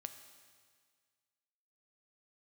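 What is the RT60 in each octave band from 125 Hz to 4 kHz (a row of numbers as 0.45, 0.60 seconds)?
1.9, 1.8, 1.8, 1.8, 1.8, 1.8 seconds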